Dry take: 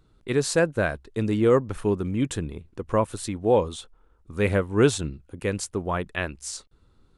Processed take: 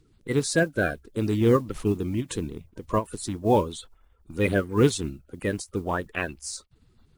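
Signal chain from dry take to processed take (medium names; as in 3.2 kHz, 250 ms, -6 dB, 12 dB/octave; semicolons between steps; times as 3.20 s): coarse spectral quantiser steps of 30 dB; modulation noise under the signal 31 dB; endings held to a fixed fall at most 340 dB/s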